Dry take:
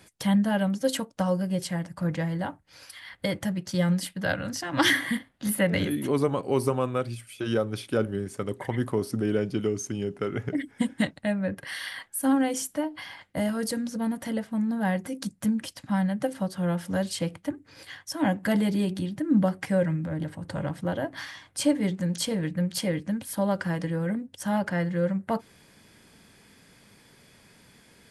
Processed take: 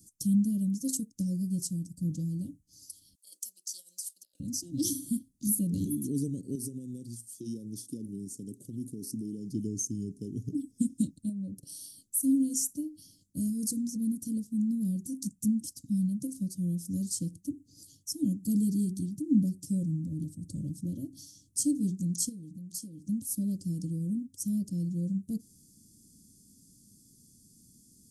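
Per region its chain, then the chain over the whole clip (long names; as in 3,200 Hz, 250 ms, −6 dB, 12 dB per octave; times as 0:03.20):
0:03.15–0:04.40: high-pass filter 860 Hz 24 dB per octave + compressor whose output falls as the input rises −38 dBFS, ratio −0.5
0:06.55–0:09.51: downward compressor, threshold −26 dBFS + high-pass filter 150 Hz
0:11.29–0:11.90: parametric band 740 Hz +14.5 dB 0.72 octaves + downward compressor 2 to 1, threshold −30 dBFS + transient designer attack +5 dB, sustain −2 dB
0:22.29–0:23.09: downward compressor 5 to 1, threshold −34 dBFS + low-shelf EQ 160 Hz −7.5 dB
whole clip: elliptic band-stop filter 270–6,100 Hz, stop band 60 dB; bass and treble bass −3 dB, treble +4 dB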